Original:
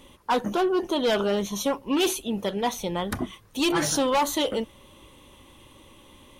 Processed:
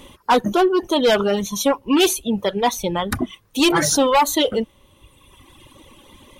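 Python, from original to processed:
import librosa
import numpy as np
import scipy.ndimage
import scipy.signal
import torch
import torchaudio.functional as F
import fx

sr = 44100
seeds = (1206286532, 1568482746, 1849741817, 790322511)

y = fx.dereverb_blind(x, sr, rt60_s=1.7)
y = y * librosa.db_to_amplitude(8.0)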